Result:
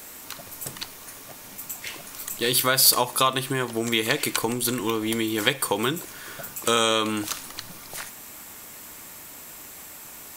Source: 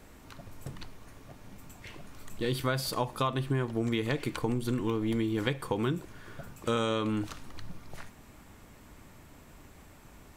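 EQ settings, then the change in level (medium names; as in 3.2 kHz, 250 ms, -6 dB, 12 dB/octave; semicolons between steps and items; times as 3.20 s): RIAA curve recording; +9.0 dB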